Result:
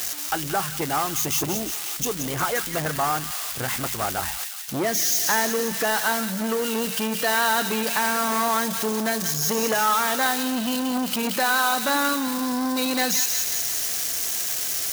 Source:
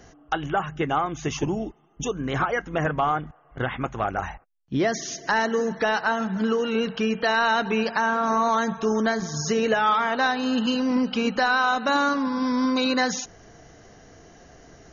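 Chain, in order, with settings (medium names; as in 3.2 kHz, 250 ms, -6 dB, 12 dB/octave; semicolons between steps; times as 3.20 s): zero-crossing glitches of -17 dBFS; high-pass 57 Hz; on a send: feedback echo behind a high-pass 177 ms, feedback 59%, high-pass 2.4 kHz, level -4 dB; on the sum: transformer saturation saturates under 1.3 kHz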